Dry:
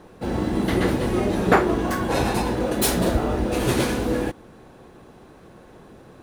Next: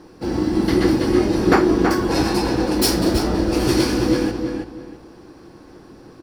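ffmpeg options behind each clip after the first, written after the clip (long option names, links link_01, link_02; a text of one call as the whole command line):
ffmpeg -i in.wav -filter_complex "[0:a]superequalizer=6b=2.24:8b=0.708:14b=3.16,asplit=2[link_01][link_02];[link_02]adelay=327,lowpass=frequency=4000:poles=1,volume=-5dB,asplit=2[link_03][link_04];[link_04]adelay=327,lowpass=frequency=4000:poles=1,volume=0.25,asplit=2[link_05][link_06];[link_06]adelay=327,lowpass=frequency=4000:poles=1,volume=0.25[link_07];[link_01][link_03][link_05][link_07]amix=inputs=4:normalize=0" out.wav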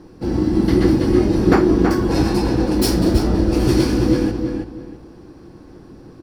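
ffmpeg -i in.wav -af "lowshelf=frequency=330:gain=10,volume=-3.5dB" out.wav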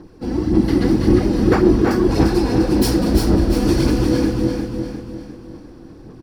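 ffmpeg -i in.wav -filter_complex "[0:a]aphaser=in_gain=1:out_gain=1:delay=4.2:decay=0.47:speed=1.8:type=sinusoidal,asplit=2[link_01][link_02];[link_02]aecho=0:1:351|702|1053|1404|1755:0.531|0.234|0.103|0.0452|0.0199[link_03];[link_01][link_03]amix=inputs=2:normalize=0,volume=-2.5dB" out.wav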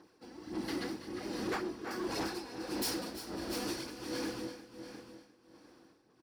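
ffmpeg -i in.wav -af "highpass=frequency=1200:poles=1,tremolo=f=1.4:d=0.7,volume=23.5dB,asoftclip=hard,volume=-23.5dB,volume=-7.5dB" out.wav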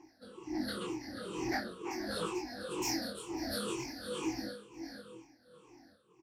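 ffmpeg -i in.wav -af "afftfilt=real='re*pow(10,23/40*sin(2*PI*(0.71*log(max(b,1)*sr/1024/100)/log(2)-(-2.1)*(pts-256)/sr)))':imag='im*pow(10,23/40*sin(2*PI*(0.71*log(max(b,1)*sr/1024/100)/log(2)-(-2.1)*(pts-256)/sr)))':win_size=1024:overlap=0.75,flanger=delay=18.5:depth=7.8:speed=0.45,aresample=32000,aresample=44100,volume=-1.5dB" out.wav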